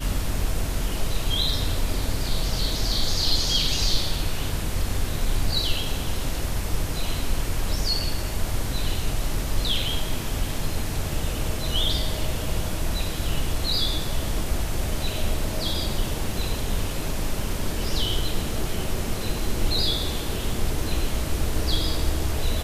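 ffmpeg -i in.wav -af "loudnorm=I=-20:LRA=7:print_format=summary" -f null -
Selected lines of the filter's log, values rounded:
Input Integrated:    -26.9 LUFS
Input True Peak:      -8.6 dBTP
Input LRA:             3.6 LU
Input Threshold:     -36.9 LUFS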